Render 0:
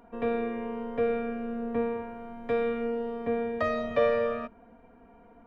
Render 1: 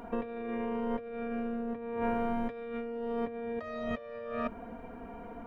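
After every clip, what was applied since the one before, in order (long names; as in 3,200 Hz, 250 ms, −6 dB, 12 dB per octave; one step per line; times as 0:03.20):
compressor whose output falls as the input rises −39 dBFS, ratio −1
level +2.5 dB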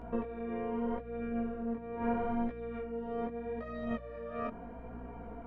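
mains hum 60 Hz, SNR 15 dB
high-shelf EQ 2,900 Hz −10.5 dB
chorus effect 0.79 Hz, delay 16.5 ms, depth 6.5 ms
level +1.5 dB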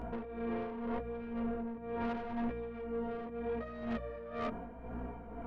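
soft clipping −36 dBFS, distortion −9 dB
amplitude tremolo 2 Hz, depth 59%
level +5 dB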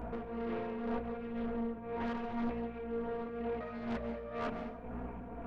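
dense smooth reverb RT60 0.67 s, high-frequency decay 0.8×, pre-delay 120 ms, DRR 7.5 dB
highs frequency-modulated by the lows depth 0.44 ms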